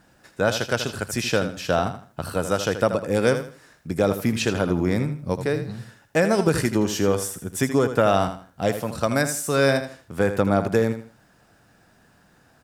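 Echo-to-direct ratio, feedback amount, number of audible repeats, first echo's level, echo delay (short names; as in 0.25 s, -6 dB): -9.5 dB, 28%, 3, -10.0 dB, 80 ms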